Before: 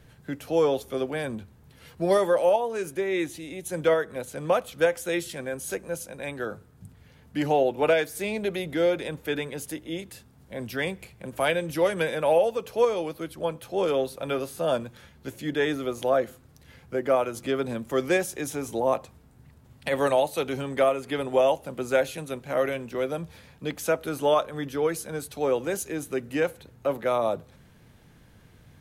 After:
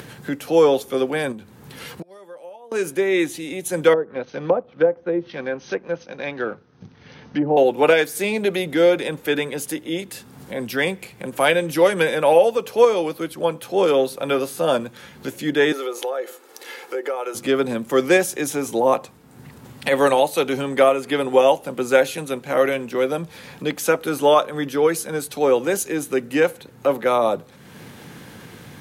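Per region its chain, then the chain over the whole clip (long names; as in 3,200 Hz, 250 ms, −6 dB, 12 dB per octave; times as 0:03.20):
0:01.32–0:02.72: gate with flip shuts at −22 dBFS, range −37 dB + downward compressor 2 to 1, threshold −45 dBFS
0:03.93–0:07.57: mu-law and A-law mismatch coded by A + treble cut that deepens with the level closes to 590 Hz, closed at −23.5 dBFS + linear-phase brick-wall low-pass 6,400 Hz
0:15.72–0:17.35: high-pass filter 360 Hz 24 dB per octave + downward compressor 3 to 1, threshold −33 dBFS + comb filter 2.3 ms, depth 41%
whole clip: upward compression, threshold −34 dBFS; high-pass filter 170 Hz 12 dB per octave; notch filter 640 Hz, Q 12; level +8 dB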